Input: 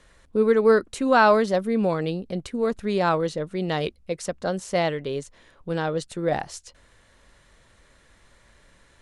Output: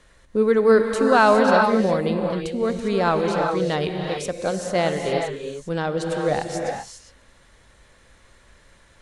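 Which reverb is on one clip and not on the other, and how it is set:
reverb whose tail is shaped and stops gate 430 ms rising, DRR 2 dB
level +1 dB

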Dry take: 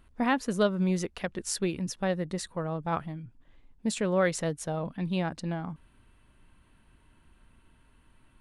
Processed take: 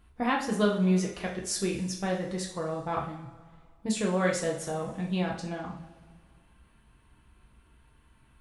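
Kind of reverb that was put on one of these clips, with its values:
coupled-rooms reverb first 0.43 s, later 2 s, from −18 dB, DRR −1.5 dB
level −3 dB

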